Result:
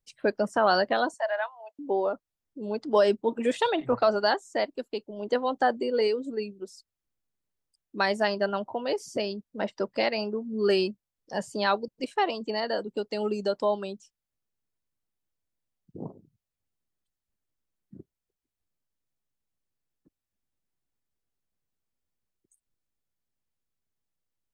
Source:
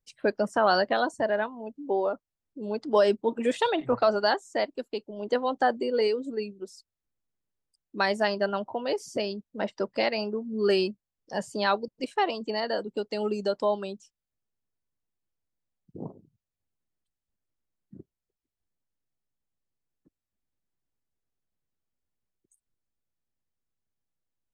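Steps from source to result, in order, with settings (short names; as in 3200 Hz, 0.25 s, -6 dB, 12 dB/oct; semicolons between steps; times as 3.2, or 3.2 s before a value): 1.14–1.79 elliptic high-pass 650 Hz, stop band 70 dB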